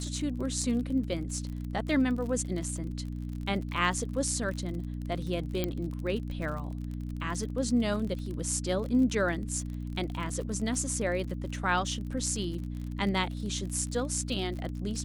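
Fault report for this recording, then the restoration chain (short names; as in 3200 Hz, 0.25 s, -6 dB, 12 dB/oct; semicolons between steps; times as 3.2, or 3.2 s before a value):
crackle 41/s -36 dBFS
hum 60 Hz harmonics 5 -36 dBFS
5.64 pop -15 dBFS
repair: de-click; de-hum 60 Hz, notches 5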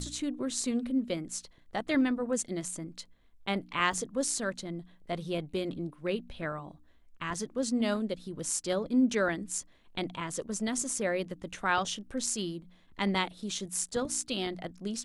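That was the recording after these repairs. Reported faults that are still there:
none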